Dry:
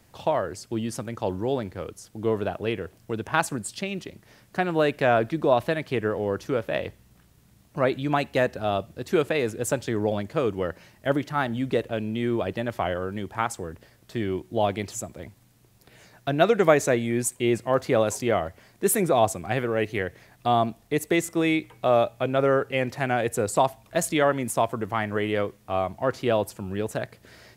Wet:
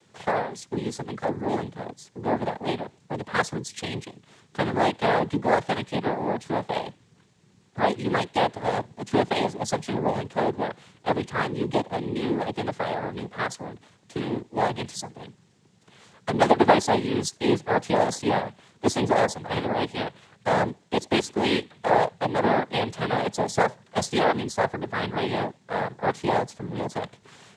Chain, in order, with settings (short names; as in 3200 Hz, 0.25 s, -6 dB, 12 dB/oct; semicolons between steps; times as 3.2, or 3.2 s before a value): noise vocoder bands 6